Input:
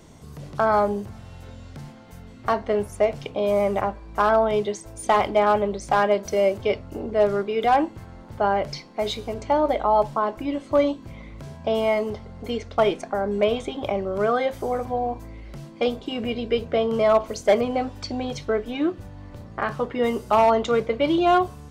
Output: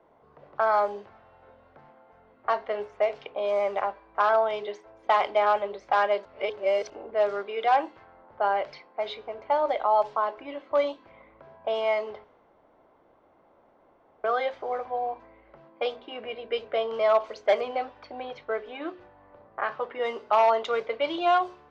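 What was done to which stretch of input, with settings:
6.25–6.9 reverse
12.24–14.24 room tone
whole clip: notches 60/120/180/240/300/360/420 Hz; low-pass opened by the level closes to 1000 Hz, open at -15 dBFS; three-band isolator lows -23 dB, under 430 Hz, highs -23 dB, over 5900 Hz; gain -2 dB

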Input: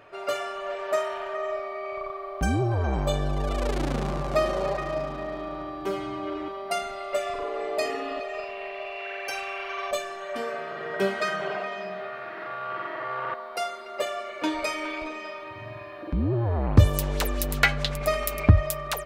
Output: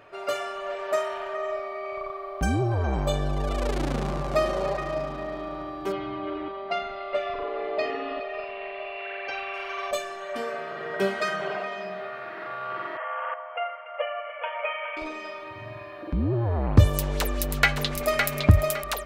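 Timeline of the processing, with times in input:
5.92–9.54 LPF 4000 Hz 24 dB/oct
12.97–14.97 brick-wall FIR band-pass 450–3400 Hz
17.2–18.27 echo throw 0.56 s, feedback 25%, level -5 dB

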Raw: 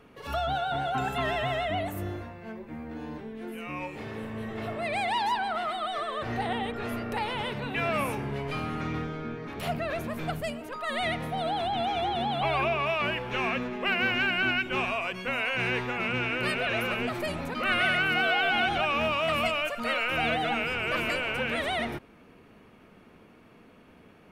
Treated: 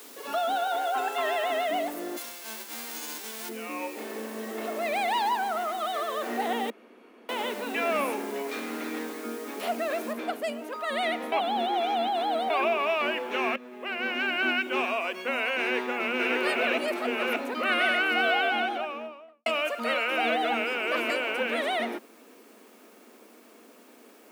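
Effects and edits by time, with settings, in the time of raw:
0.67–1.5 HPF 370 Hz 24 dB/oct
2.16–3.48 spectral whitening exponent 0.1
5.27–5.79 high shelf 5600 Hz -> 2800 Hz -11 dB
6.7–7.29 room tone
8.47–9.24 minimum comb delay 0.5 ms
10.13 noise floor step -48 dB -61 dB
11.32–12.5 reverse
13.56–14.5 fade in, from -17.5 dB
15.61–16.23 echo throw 0.58 s, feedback 35%, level -2 dB
16.78–17.36 reverse
18.27–19.46 studio fade out
whole clip: steep high-pass 220 Hz 72 dB/oct; bell 500 Hz +3.5 dB 1.5 oct

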